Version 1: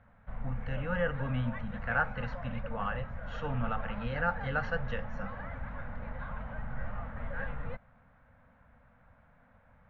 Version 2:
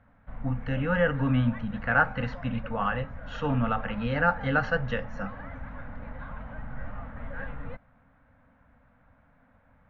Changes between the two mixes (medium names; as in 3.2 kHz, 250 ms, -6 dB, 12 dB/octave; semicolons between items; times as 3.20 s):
speech +7.0 dB; master: add peaking EQ 280 Hz +9.5 dB 0.27 oct